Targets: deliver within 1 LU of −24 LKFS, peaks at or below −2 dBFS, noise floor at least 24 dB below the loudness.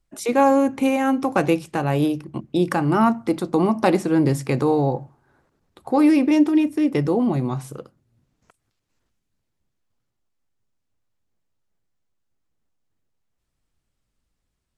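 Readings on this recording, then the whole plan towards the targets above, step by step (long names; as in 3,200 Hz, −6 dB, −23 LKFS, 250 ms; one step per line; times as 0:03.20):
integrated loudness −20.0 LKFS; sample peak −4.5 dBFS; target loudness −24.0 LKFS
→ level −4 dB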